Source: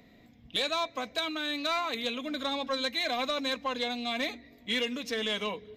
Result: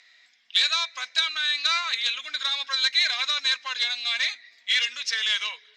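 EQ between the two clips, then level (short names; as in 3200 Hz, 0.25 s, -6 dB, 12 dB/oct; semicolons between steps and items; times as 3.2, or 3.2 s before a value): resonant high-pass 1600 Hz, resonance Q 2.4; LPF 9500 Hz 24 dB/oct; bell 5200 Hz +13.5 dB 1.3 oct; 0.0 dB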